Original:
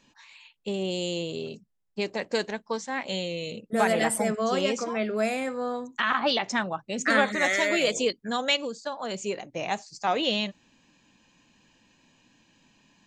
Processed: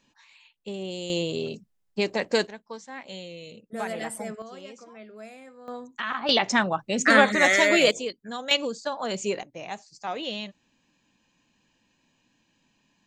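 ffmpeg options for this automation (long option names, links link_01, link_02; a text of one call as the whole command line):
ffmpeg -i in.wav -af "asetnsamples=nb_out_samples=441:pad=0,asendcmd='1.1 volume volume 4dB;2.47 volume volume -8.5dB;4.42 volume volume -17dB;5.68 volume volume -5dB;6.29 volume volume 5dB;7.91 volume volume -6dB;8.51 volume volume 3dB;9.43 volume volume -6.5dB',volume=-4.5dB" out.wav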